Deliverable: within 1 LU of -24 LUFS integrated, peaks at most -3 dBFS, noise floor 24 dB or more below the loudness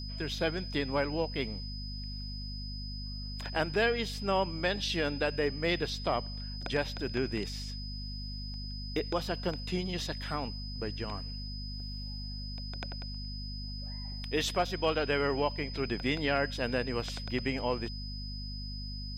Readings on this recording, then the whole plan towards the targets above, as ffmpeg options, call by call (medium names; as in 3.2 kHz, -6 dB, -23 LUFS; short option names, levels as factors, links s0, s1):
hum 50 Hz; highest harmonic 250 Hz; hum level -38 dBFS; steady tone 5 kHz; tone level -43 dBFS; loudness -34.0 LUFS; peak level -15.0 dBFS; loudness target -24.0 LUFS
-> -af "bandreject=f=50:t=h:w=4,bandreject=f=100:t=h:w=4,bandreject=f=150:t=h:w=4,bandreject=f=200:t=h:w=4,bandreject=f=250:t=h:w=4"
-af "bandreject=f=5000:w=30"
-af "volume=3.16"